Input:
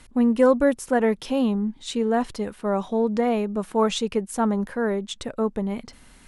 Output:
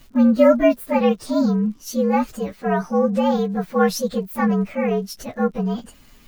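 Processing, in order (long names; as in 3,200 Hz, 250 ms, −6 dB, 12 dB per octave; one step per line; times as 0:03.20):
partials spread apart or drawn together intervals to 117%
surface crackle 170 per second −51 dBFS
level +5 dB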